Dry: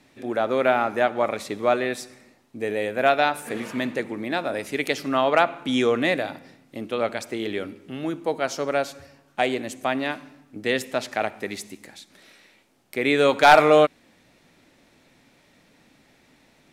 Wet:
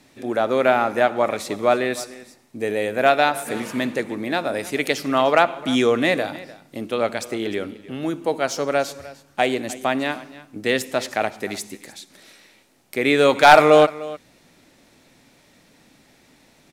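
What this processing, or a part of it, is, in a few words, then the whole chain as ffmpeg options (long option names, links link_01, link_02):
exciter from parts: -filter_complex "[0:a]asettb=1/sr,asplit=3[link_01][link_02][link_03];[link_01]atrim=end=7.344[link_04];[link_02]atrim=start=7.34:end=8.02,asetpts=PTS-STARTPTS,afade=type=in:duration=0.004:curve=qsin,afade=type=out:start_time=0.676:duration=0.004:curve=qsin,highshelf=frequency=4600:gain=-4.5[link_05];[link_03]atrim=start=8.016[link_06];[link_04][link_05]acrossfade=duration=0.004:curve1=hsin:curve2=qsin[link_07];[link_07][link_06]acrossfade=duration=0.004:curve1=qsin:curve2=hsin,asplit=2[link_08][link_09];[link_09]highpass=3600,asoftclip=type=tanh:threshold=-36dB,volume=-4dB[link_10];[link_08][link_10]amix=inputs=2:normalize=0,aecho=1:1:302:0.119,volume=3dB"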